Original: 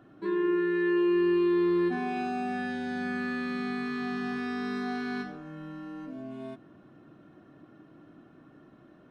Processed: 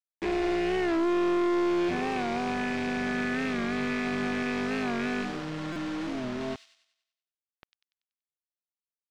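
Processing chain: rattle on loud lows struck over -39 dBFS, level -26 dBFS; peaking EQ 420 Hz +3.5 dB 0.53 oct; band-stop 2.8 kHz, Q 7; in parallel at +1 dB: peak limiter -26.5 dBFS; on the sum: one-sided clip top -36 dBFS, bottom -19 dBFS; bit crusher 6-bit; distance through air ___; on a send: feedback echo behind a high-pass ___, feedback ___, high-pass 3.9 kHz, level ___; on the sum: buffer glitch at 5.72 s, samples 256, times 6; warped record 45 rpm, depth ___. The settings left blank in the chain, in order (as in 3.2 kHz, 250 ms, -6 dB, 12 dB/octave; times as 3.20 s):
130 m, 95 ms, 47%, -4.5 dB, 100 cents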